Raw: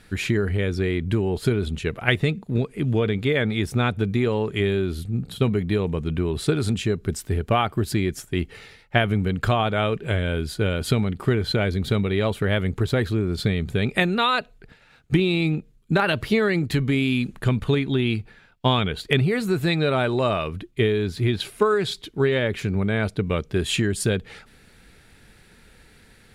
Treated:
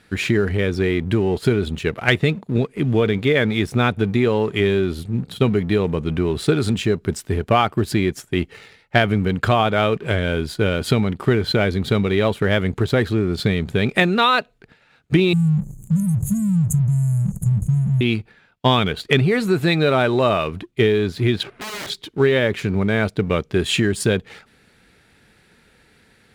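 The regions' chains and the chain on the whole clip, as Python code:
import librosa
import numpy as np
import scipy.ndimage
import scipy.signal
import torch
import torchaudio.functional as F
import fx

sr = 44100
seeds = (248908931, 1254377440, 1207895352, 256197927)

y = fx.chain(x, sr, fx.brickwall_bandstop(low_hz=200.0, high_hz=6200.0),
    fx.env_flatten(amount_pct=70), at=(15.33, 18.01))
y = fx.chain(y, sr, fx.over_compress(threshold_db=-26.0, ratio=-1.0),
    fx.lowpass(hz=1500.0, slope=12),
    fx.overflow_wrap(gain_db=29.0), at=(21.43, 21.9))
y = fx.highpass(y, sr, hz=120.0, slope=6)
y = fx.high_shelf(y, sr, hz=6700.0, db=-6.0)
y = fx.leveller(y, sr, passes=1)
y = y * librosa.db_to_amplitude(1.5)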